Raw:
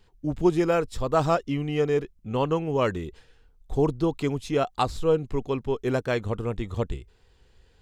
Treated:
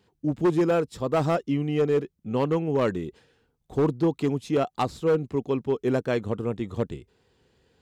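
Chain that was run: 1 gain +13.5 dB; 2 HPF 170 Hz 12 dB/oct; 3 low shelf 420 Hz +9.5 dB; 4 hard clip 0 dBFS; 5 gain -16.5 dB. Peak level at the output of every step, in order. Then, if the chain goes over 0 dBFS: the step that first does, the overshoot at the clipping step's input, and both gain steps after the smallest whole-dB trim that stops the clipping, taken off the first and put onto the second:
+4.5, +4.0, +8.5, 0.0, -16.5 dBFS; step 1, 8.5 dB; step 1 +4.5 dB, step 5 -7.5 dB

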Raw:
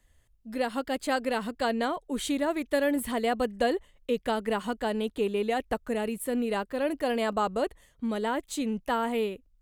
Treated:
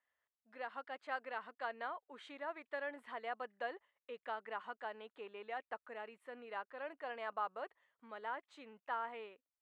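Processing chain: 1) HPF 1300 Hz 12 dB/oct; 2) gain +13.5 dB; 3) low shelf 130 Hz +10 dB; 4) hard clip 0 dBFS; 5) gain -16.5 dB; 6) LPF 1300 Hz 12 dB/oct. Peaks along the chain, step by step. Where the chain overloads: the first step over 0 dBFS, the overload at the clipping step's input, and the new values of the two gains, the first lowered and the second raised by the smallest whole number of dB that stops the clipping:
-18.5, -5.0, -4.5, -4.5, -21.0, -27.0 dBFS; no overload

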